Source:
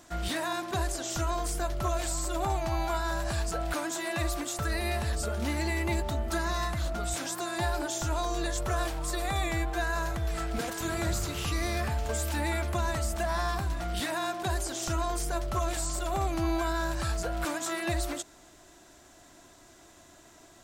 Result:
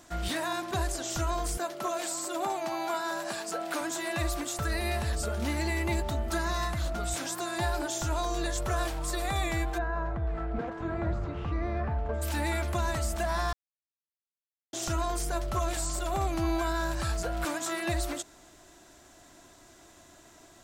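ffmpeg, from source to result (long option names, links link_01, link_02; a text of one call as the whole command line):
ffmpeg -i in.wav -filter_complex "[0:a]asettb=1/sr,asplit=3[link_01][link_02][link_03];[link_01]atrim=end=1.574[link_04];[link_02]atrim=start=1.57:end=3.81,asetpts=PTS-STARTPTS,afade=type=in:duration=0.004:curve=qsin,afade=type=out:start_time=2.236:duration=0.004:curve=qsin,highpass=frequency=210:width=0.5412,highpass=frequency=210:width=1.3066[link_05];[link_03]atrim=start=3.806[link_06];[link_04][link_05]acrossfade=duration=0.004:curve1=hsin:curve2=qsin[link_07];[link_07][link_06]acrossfade=duration=0.004:curve1=qsin:curve2=hsin,asplit=3[link_08][link_09][link_10];[link_08]afade=type=out:start_time=9.77:duration=0.02[link_11];[link_09]lowpass=1300,afade=type=in:start_time=9.77:duration=0.02,afade=type=out:start_time=12.21:duration=0.02[link_12];[link_10]afade=type=in:start_time=12.21:duration=0.02[link_13];[link_11][link_12][link_13]amix=inputs=3:normalize=0,asplit=3[link_14][link_15][link_16];[link_14]atrim=end=13.53,asetpts=PTS-STARTPTS,afade=type=out:start_time=13.526:duration=0.004:curve=hsin[link_17];[link_15]atrim=start=13.53:end=14.73,asetpts=PTS-STARTPTS,volume=0[link_18];[link_16]atrim=start=14.73,asetpts=PTS-STARTPTS,afade=type=in:duration=0.004:curve=hsin[link_19];[link_17][link_18][link_19]concat=n=3:v=0:a=1" out.wav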